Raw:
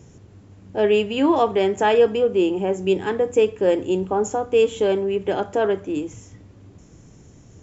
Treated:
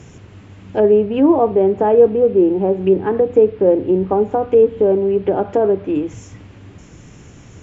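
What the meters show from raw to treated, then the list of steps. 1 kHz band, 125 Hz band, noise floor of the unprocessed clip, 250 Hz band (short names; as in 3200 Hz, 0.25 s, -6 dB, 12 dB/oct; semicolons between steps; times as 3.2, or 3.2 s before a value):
+2.0 dB, +6.5 dB, -48 dBFS, +6.5 dB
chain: treble ducked by the level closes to 660 Hz, closed at -17.5 dBFS; band noise 480–3000 Hz -61 dBFS; gain +6.5 dB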